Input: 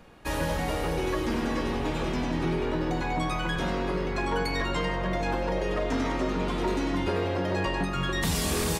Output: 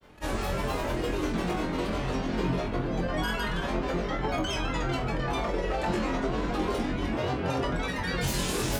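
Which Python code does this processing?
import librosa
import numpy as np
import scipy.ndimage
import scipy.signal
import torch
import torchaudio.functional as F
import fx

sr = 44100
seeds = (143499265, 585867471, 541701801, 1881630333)

y = fx.granulator(x, sr, seeds[0], grain_ms=100.0, per_s=20.0, spray_ms=100.0, spread_st=7)
y = fx.room_flutter(y, sr, wall_m=3.9, rt60_s=0.26)
y = y * librosa.db_to_amplitude(-1.5)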